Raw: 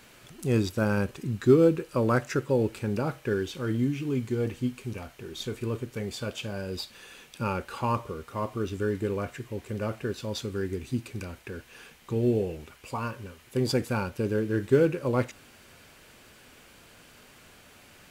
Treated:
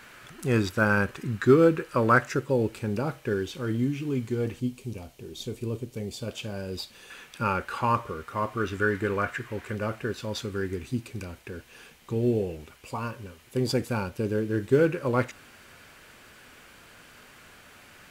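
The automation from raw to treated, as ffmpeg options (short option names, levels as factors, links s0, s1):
-af "asetnsamples=n=441:p=0,asendcmd='2.29 equalizer g 0;4.6 equalizer g -11.5;6.28 equalizer g -2.5;7.1 equalizer g 7.5;8.58 equalizer g 13.5;9.75 equalizer g 5;10.88 equalizer g -1;14.79 equalizer g 5.5',equalizer=f=1500:t=o:w=1.3:g=10"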